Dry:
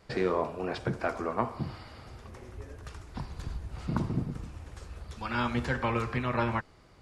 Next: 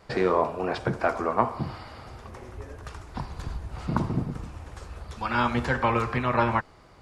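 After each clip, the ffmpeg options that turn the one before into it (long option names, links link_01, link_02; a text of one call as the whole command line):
ffmpeg -i in.wav -af "equalizer=frequency=900:width_type=o:width=1.6:gain=5,volume=3dB" out.wav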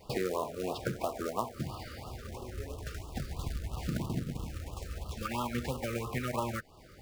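ffmpeg -i in.wav -af "acrusher=bits=3:mode=log:mix=0:aa=0.000001,acompressor=threshold=-32dB:ratio=3,afftfilt=real='re*(1-between(b*sr/1024,810*pow(1900/810,0.5+0.5*sin(2*PI*3*pts/sr))/1.41,810*pow(1900/810,0.5+0.5*sin(2*PI*3*pts/sr))*1.41))':imag='im*(1-between(b*sr/1024,810*pow(1900/810,0.5+0.5*sin(2*PI*3*pts/sr))/1.41,810*pow(1900/810,0.5+0.5*sin(2*PI*3*pts/sr))*1.41))':win_size=1024:overlap=0.75" out.wav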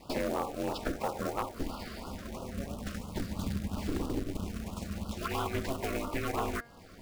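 ffmpeg -i in.wav -af "aeval=exprs='val(0)*sin(2*PI*140*n/s)':channel_layout=same,bandreject=frequency=235.1:width_type=h:width=4,bandreject=frequency=470.2:width_type=h:width=4,bandreject=frequency=705.3:width_type=h:width=4,bandreject=frequency=940.4:width_type=h:width=4,bandreject=frequency=1175.5:width_type=h:width=4,bandreject=frequency=1410.6:width_type=h:width=4,bandreject=frequency=1645.7:width_type=h:width=4,bandreject=frequency=1880.8:width_type=h:width=4,bandreject=frequency=2115.9:width_type=h:width=4,volume=29.5dB,asoftclip=hard,volume=-29.5dB,volume=5dB" out.wav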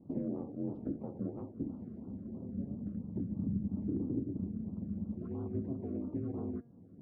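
ffmpeg -i in.wav -af "asuperpass=centerf=180:order=4:qfactor=0.86,volume=2dB" out.wav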